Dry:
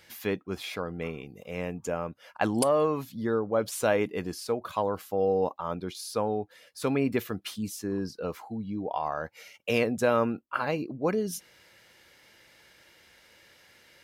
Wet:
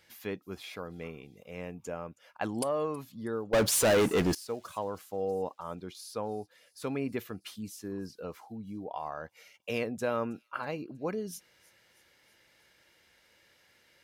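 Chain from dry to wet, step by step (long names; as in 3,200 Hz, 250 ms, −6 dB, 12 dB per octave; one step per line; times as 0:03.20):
0:03.53–0:04.35: leveller curve on the samples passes 5
on a send: delay with a high-pass on its return 321 ms, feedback 60%, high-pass 4,800 Hz, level −20 dB
on the sum: level −7 dB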